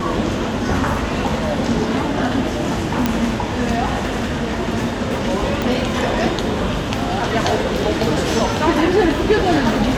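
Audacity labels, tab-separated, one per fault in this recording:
3.060000	3.060000	pop -2 dBFS
5.620000	5.620000	pop

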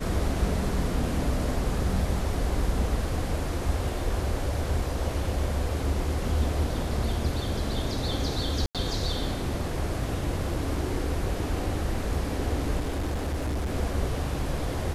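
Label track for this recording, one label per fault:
8.660000	8.750000	gap 87 ms
12.790000	13.730000	clipped -25 dBFS

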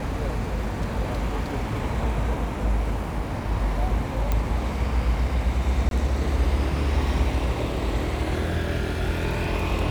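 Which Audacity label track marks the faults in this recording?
4.320000	4.320000	pop -11 dBFS
5.890000	5.910000	gap 22 ms

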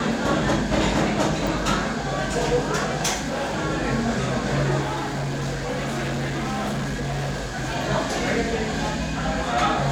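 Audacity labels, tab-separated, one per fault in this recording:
1.470000	1.470000	pop
3.140000	3.580000	clipped -22 dBFS
4.810000	7.770000	clipped -23 dBFS

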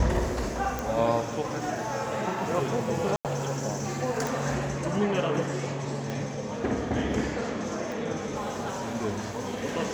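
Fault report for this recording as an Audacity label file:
0.790000	0.790000	pop
3.160000	3.250000	gap 88 ms
4.270000	4.270000	pop
6.100000	6.100000	pop -19 dBFS
7.920000	7.920000	pop

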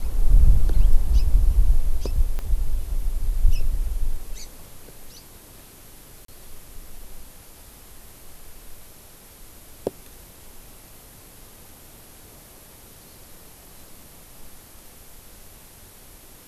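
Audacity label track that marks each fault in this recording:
2.390000	2.390000	pop -17 dBFS
6.250000	6.280000	gap 33 ms

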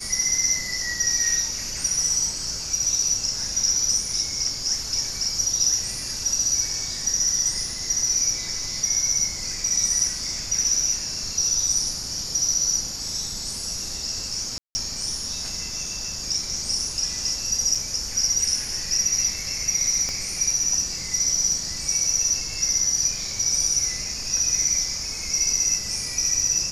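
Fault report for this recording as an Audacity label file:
14.580000	14.750000	gap 0.17 s
17.750000	17.760000	gap 5.2 ms
20.090000	20.090000	pop -15 dBFS

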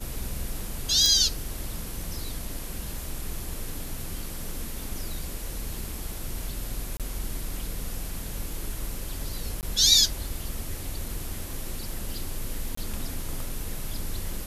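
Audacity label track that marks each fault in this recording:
1.060000	1.060000	pop
6.970000	7.000000	gap 27 ms
9.610000	9.630000	gap 18 ms
12.750000	12.770000	gap 24 ms

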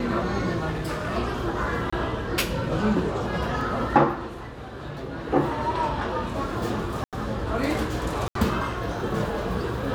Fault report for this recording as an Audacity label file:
0.700000	1.180000	clipped -25 dBFS
1.900000	1.930000	gap 25 ms
3.610000	3.610000	gap 2.1 ms
7.040000	7.130000	gap 87 ms
8.280000	8.350000	gap 73 ms

